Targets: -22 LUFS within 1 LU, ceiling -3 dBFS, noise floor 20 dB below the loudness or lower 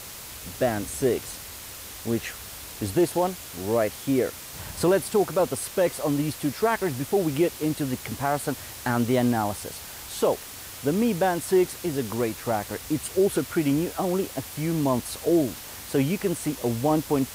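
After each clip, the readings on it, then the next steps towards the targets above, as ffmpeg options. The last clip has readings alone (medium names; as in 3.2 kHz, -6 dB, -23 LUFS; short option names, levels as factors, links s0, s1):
noise floor -40 dBFS; noise floor target -46 dBFS; loudness -26.0 LUFS; peak level -11.5 dBFS; loudness target -22.0 LUFS
-> -af "afftdn=nr=6:nf=-40"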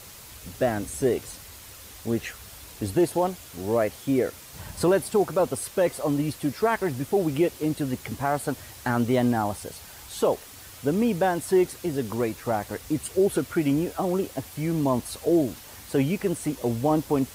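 noise floor -45 dBFS; noise floor target -46 dBFS
-> -af "afftdn=nr=6:nf=-45"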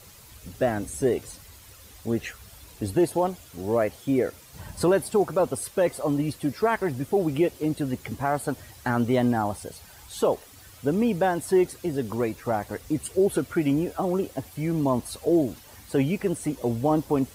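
noise floor -49 dBFS; loudness -26.0 LUFS; peak level -12.0 dBFS; loudness target -22.0 LUFS
-> -af "volume=1.58"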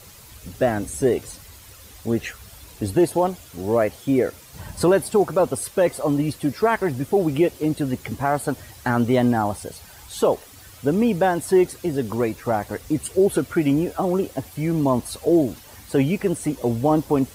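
loudness -22.0 LUFS; peak level -8.0 dBFS; noise floor -45 dBFS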